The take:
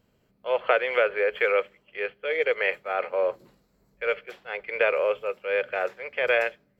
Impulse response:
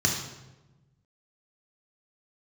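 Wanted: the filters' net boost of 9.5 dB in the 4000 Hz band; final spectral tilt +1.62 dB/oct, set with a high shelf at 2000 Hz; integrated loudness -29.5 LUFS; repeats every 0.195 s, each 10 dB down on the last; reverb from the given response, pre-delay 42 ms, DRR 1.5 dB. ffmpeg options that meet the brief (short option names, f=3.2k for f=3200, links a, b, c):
-filter_complex "[0:a]highshelf=f=2k:g=6.5,equalizer=f=4k:t=o:g=7,aecho=1:1:195|390|585|780:0.316|0.101|0.0324|0.0104,asplit=2[a][b];[1:a]atrim=start_sample=2205,adelay=42[c];[b][c]afir=irnorm=-1:irlink=0,volume=-13dB[d];[a][d]amix=inputs=2:normalize=0,volume=-8.5dB"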